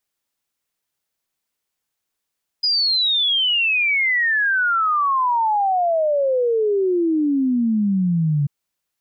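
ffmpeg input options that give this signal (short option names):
-f lavfi -i "aevalsrc='0.168*clip(min(t,5.84-t)/0.01,0,1)*sin(2*PI*5000*5.84/log(140/5000)*(exp(log(140/5000)*t/5.84)-1))':d=5.84:s=44100"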